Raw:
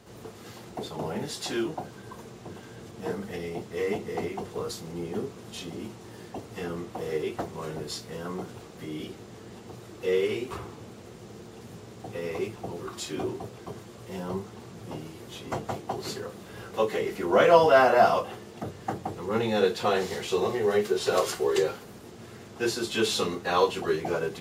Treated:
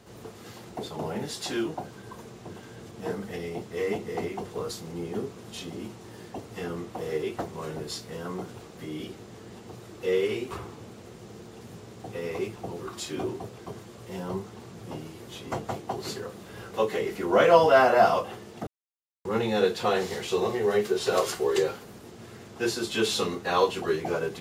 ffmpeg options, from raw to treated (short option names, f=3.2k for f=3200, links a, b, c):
-filter_complex "[0:a]asplit=3[a][b][c];[a]atrim=end=18.67,asetpts=PTS-STARTPTS,afade=t=out:st=18.666:d=0.004:c=hsin[d];[b]atrim=start=18.67:end=19.25,asetpts=PTS-STARTPTS,volume=0[e];[c]atrim=start=19.25,asetpts=PTS-STARTPTS,afade=t=in:d=0.004:c=hsin[f];[d][e][f]concat=n=3:v=0:a=1"